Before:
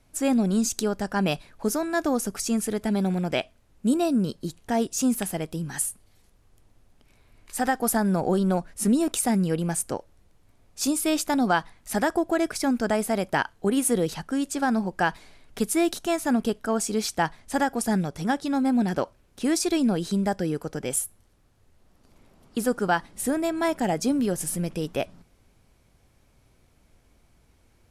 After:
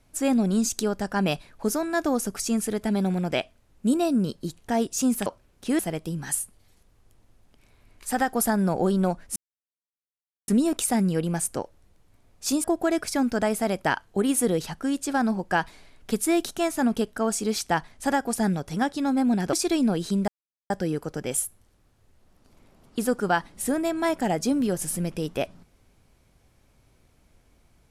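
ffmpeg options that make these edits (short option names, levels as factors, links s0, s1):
-filter_complex "[0:a]asplit=7[s0][s1][s2][s3][s4][s5][s6];[s0]atrim=end=5.262[s7];[s1]atrim=start=19.008:end=19.542[s8];[s2]atrim=start=5.258:end=8.83,asetpts=PTS-STARTPTS,afade=t=out:st=3.568:d=0.004:c=hsin,apad=pad_dur=1.12[s9];[s3]atrim=start=8.83:end=10.992,asetpts=PTS-STARTPTS,afade=t=in:d=0.004:c=hsin[s10];[s4]atrim=start=12.118:end=19.012[s11];[s5]atrim=start=19.538:end=20.29,asetpts=PTS-STARTPTS,afade=t=out:st=0.748:d=0.004:c=hsin,apad=pad_dur=0.42[s12];[s6]atrim=start=20.29,asetpts=PTS-STARTPTS,afade=t=in:d=0.004:c=hsin[s13];[s7][s8]acrossfade=d=0.004:c1=hsin:c2=hsin[s14];[s9][s10]concat=n=2:v=0:a=1[s15];[s14][s15]acrossfade=d=0.004:c1=hsin:c2=hsin[s16];[s16][s11]acrossfade=d=0.004:c1=hsin:c2=hsin[s17];[s12][s13]concat=n=2:v=0:a=1[s18];[s17][s18]acrossfade=d=0.004:c1=hsin:c2=hsin"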